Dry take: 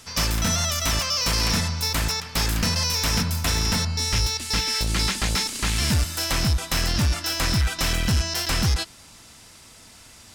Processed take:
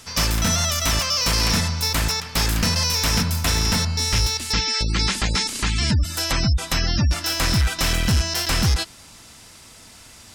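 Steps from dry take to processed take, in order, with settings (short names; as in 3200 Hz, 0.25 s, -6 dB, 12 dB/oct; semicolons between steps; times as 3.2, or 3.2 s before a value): 4.52–7.11 spectral gate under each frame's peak -25 dB strong; gain +2.5 dB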